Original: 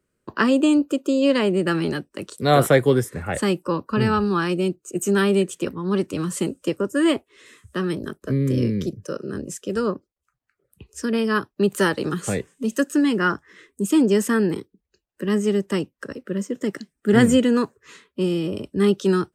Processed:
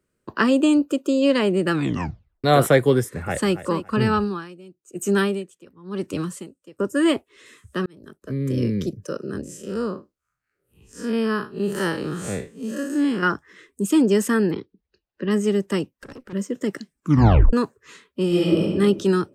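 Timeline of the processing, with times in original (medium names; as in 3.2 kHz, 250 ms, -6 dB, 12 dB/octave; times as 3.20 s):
1.73 s: tape stop 0.71 s
2.99–3.54 s: echo throw 280 ms, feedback 25%, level -12.5 dB
4.15–6.79 s: logarithmic tremolo 1 Hz, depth 22 dB
7.86–8.74 s: fade in
9.43–13.23 s: spectral blur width 117 ms
14.51–15.31 s: steep low-pass 5.1 kHz
15.91–16.33 s: valve stage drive 35 dB, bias 0.35
16.96 s: tape stop 0.57 s
18.28–18.74 s: reverb throw, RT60 1.2 s, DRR -6 dB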